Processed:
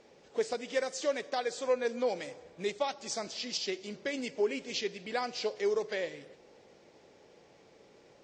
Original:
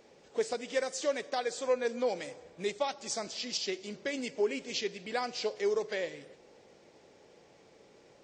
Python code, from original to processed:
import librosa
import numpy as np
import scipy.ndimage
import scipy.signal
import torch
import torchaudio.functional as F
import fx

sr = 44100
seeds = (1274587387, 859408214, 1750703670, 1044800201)

y = scipy.signal.sosfilt(scipy.signal.butter(2, 7700.0, 'lowpass', fs=sr, output='sos'), x)